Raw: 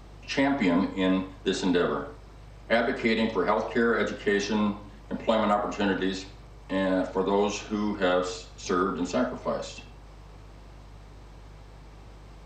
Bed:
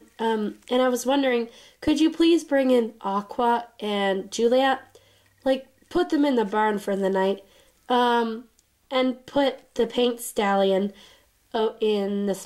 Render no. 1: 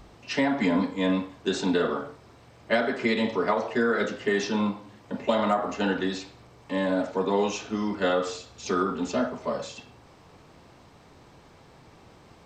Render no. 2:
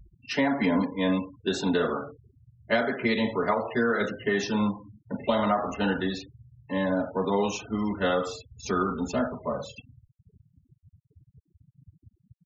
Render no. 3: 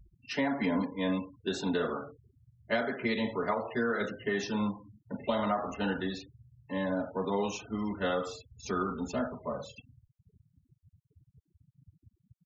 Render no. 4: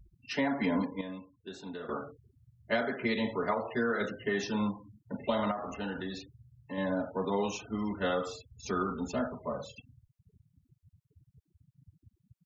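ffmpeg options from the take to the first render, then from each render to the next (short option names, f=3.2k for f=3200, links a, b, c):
-af "bandreject=f=50:t=h:w=4,bandreject=f=100:t=h:w=4,bandreject=f=150:t=h:w=4"
-af "afftfilt=real='re*gte(hypot(re,im),0.0158)':imag='im*gte(hypot(re,im),0.0158)':win_size=1024:overlap=0.75,asubboost=boost=2.5:cutoff=160"
-af "volume=-5.5dB"
-filter_complex "[0:a]asettb=1/sr,asplit=3[a][b][c];[a]atrim=end=5.514[d];[b]atrim=start=5.51:end=6.78,asetpts=PTS-STARTPTS,afade=t=in:d=0.004:c=qsin,afade=t=out:st=1.266:d=0.004:c=qsin,acompressor=threshold=-36dB:ratio=2:attack=3.2:release=140:knee=1:detection=peak[e];[c]atrim=start=6.776[f];[d][e]acrossfade=d=0.004:c1=hsin:c2=qsin[g];[g][f]acrossfade=d=0.004:c1=qsin:c2=hsin,asplit=3[h][i][j];[h]atrim=end=1.012[k];[i]atrim=start=1.008:end=1.892,asetpts=PTS-STARTPTS,volume=-11.5dB[l];[j]atrim=start=1.888[m];[k][l]acrossfade=d=0.004:c1=hsin:c2=hsin[n];[n][m]acrossfade=d=0.004:c1=hsin:c2=hsin"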